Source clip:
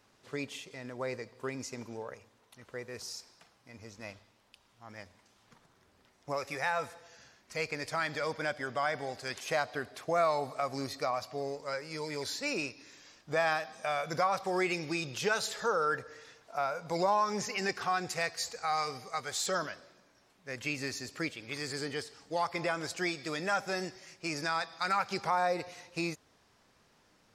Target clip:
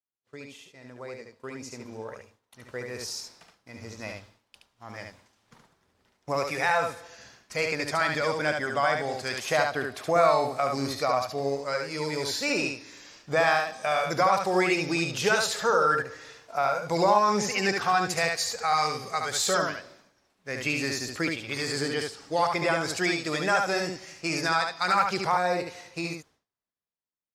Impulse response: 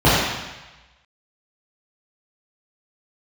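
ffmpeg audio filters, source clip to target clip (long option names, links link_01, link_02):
-af "dynaudnorm=framelen=390:gausssize=11:maxgain=13dB,agate=range=-33dB:threshold=-45dB:ratio=3:detection=peak,aecho=1:1:72:0.631,volume=-6.5dB"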